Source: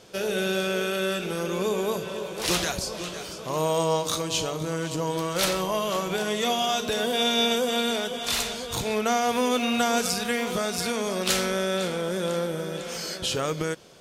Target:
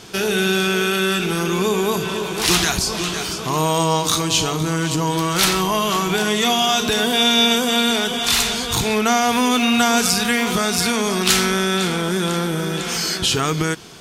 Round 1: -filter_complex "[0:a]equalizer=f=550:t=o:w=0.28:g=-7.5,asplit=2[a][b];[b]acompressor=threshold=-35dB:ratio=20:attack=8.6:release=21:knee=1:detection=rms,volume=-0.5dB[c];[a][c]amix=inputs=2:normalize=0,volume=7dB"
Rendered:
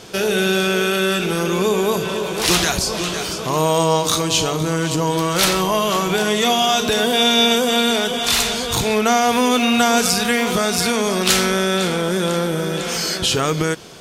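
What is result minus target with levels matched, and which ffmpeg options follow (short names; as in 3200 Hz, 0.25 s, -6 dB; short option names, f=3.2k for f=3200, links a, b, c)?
500 Hz band +2.5 dB
-filter_complex "[0:a]equalizer=f=550:t=o:w=0.28:g=-19.5,asplit=2[a][b];[b]acompressor=threshold=-35dB:ratio=20:attack=8.6:release=21:knee=1:detection=rms,volume=-0.5dB[c];[a][c]amix=inputs=2:normalize=0,volume=7dB"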